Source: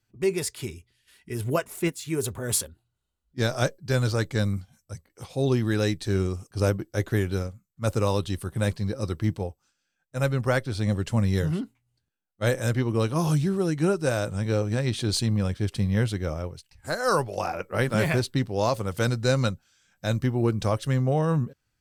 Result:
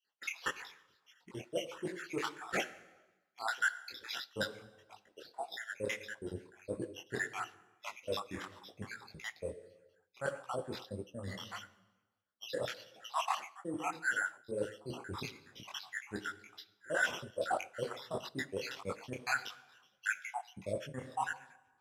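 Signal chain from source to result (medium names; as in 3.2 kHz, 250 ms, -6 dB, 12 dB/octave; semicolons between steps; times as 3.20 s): random holes in the spectrogram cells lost 84%; sample-and-hold 5×; low-pass 10 kHz 12 dB/octave; treble shelf 3.2 kHz -8 dB; plate-style reverb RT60 1.1 s, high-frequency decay 0.85×, DRR 16 dB; reverse; compression 12:1, threshold -35 dBFS, peak gain reduction 17 dB; reverse; high-pass 820 Hz 6 dB/octave; detune thickener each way 56 cents; trim +13 dB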